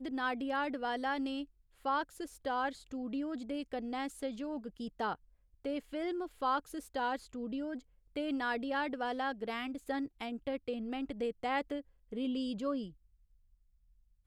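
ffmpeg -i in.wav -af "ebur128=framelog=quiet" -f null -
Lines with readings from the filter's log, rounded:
Integrated loudness:
  I:         -37.7 LUFS
  Threshold: -47.7 LUFS
Loudness range:
  LRA:         2.5 LU
  Threshold: -58.1 LUFS
  LRA low:   -39.4 LUFS
  LRA high:  -37.0 LUFS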